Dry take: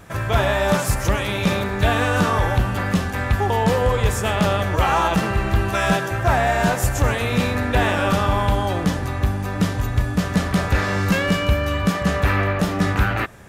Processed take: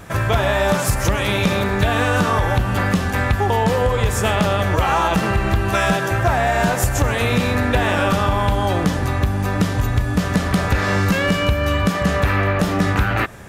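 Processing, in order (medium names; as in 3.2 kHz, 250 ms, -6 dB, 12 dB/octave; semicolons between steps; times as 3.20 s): compression, threshold -19 dBFS, peak gain reduction 7 dB; trim +5.5 dB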